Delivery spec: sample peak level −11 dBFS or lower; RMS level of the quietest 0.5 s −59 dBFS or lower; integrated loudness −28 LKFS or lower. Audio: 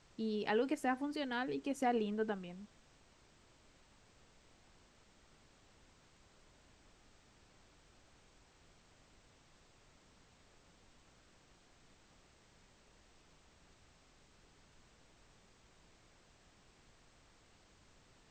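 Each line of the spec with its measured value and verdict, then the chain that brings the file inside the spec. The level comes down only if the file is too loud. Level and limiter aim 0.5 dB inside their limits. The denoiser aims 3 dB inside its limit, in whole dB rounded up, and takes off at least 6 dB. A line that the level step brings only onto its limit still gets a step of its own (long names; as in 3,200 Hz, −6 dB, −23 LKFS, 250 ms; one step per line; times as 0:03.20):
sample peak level −22.0 dBFS: in spec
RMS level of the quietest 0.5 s −67 dBFS: in spec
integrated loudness −37.5 LKFS: in spec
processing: no processing needed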